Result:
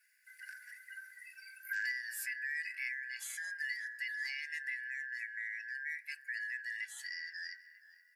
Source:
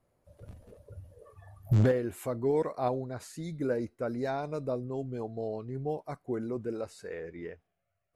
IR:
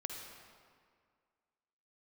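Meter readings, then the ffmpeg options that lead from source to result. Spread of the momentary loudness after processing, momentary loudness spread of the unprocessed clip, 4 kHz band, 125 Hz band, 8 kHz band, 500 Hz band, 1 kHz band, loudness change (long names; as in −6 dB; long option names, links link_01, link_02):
14 LU, 22 LU, +6.0 dB, below −40 dB, +5.0 dB, below −40 dB, below −30 dB, −6.5 dB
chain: -filter_complex "[0:a]afftfilt=real='real(if(lt(b,272),68*(eq(floor(b/68),0)*2+eq(floor(b/68),1)*0+eq(floor(b/68),2)*3+eq(floor(b/68),3)*1)+mod(b,68),b),0)':imag='imag(if(lt(b,272),68*(eq(floor(b/68),0)*2+eq(floor(b/68),1)*0+eq(floor(b/68),2)*3+eq(floor(b/68),3)*1)+mod(b,68),b),0)':win_size=2048:overlap=0.75,equalizer=frequency=1600:width_type=o:width=0.44:gain=5.5,aecho=1:1:3.5:0.45,asplit=2[link_01][link_02];[link_02]adelay=472,lowpass=frequency=1700:poles=1,volume=-17.5dB,asplit=2[link_03][link_04];[link_04]adelay=472,lowpass=frequency=1700:poles=1,volume=0.53,asplit=2[link_05][link_06];[link_06]adelay=472,lowpass=frequency=1700:poles=1,volume=0.53,asplit=2[link_07][link_08];[link_08]adelay=472,lowpass=frequency=1700:poles=1,volume=0.53,asplit=2[link_09][link_10];[link_10]adelay=472,lowpass=frequency=1700:poles=1,volume=0.53[link_11];[link_01][link_03][link_05][link_07][link_09][link_11]amix=inputs=6:normalize=0,asplit=2[link_12][link_13];[link_13]alimiter=limit=-20dB:level=0:latency=1:release=159,volume=-1.5dB[link_14];[link_12][link_14]amix=inputs=2:normalize=0,aderivative,bandreject=frequency=58.73:width_type=h:width=4,bandreject=frequency=117.46:width_type=h:width=4,bandreject=frequency=176.19:width_type=h:width=4,bandreject=frequency=234.92:width_type=h:width=4,bandreject=frequency=293.65:width_type=h:width=4,bandreject=frequency=352.38:width_type=h:width=4,bandreject=frequency=411.11:width_type=h:width=4,bandreject=frequency=469.84:width_type=h:width=4,bandreject=frequency=528.57:width_type=h:width=4,bandreject=frequency=587.3:width_type=h:width=4,bandreject=frequency=646.03:width_type=h:width=4,bandreject=frequency=704.76:width_type=h:width=4,bandreject=frequency=763.49:width_type=h:width=4,bandreject=frequency=822.22:width_type=h:width=4,bandreject=frequency=880.95:width_type=h:width=4,bandreject=frequency=939.68:width_type=h:width=4,bandreject=frequency=998.41:width_type=h:width=4,bandreject=frequency=1057.14:width_type=h:width=4,bandreject=frequency=1115.87:width_type=h:width=4,bandreject=frequency=1174.6:width_type=h:width=4,bandreject=frequency=1233.33:width_type=h:width=4,bandreject=frequency=1292.06:width_type=h:width=4,bandreject=frequency=1350.79:width_type=h:width=4,bandreject=frequency=1409.52:width_type=h:width=4,bandreject=frequency=1468.25:width_type=h:width=4,bandreject=frequency=1526.98:width_type=h:width=4,bandreject=frequency=1585.71:width_type=h:width=4,bandreject=frequency=1644.44:width_type=h:width=4,bandreject=frequency=1703.17:width_type=h:width=4,bandreject=frequency=1761.9:width_type=h:width=4,bandreject=frequency=1820.63:width_type=h:width=4,bandreject=frequency=1879.36:width_type=h:width=4,bandreject=frequency=1938.09:width_type=h:width=4,acrossover=split=290[link_15][link_16];[link_16]acompressor=threshold=-47dB:ratio=2[link_17];[link_15][link_17]amix=inputs=2:normalize=0,volume=3.5dB"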